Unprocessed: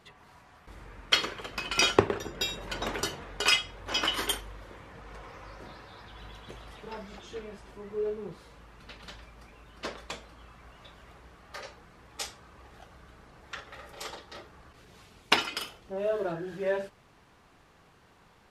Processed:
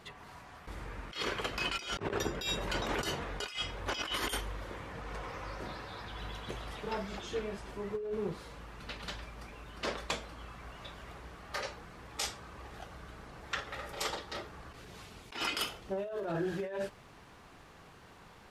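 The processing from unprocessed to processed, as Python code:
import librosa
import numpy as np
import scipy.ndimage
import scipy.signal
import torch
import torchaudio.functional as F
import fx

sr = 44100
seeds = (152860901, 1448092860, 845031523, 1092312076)

y = fx.over_compress(x, sr, threshold_db=-36.0, ratio=-1.0)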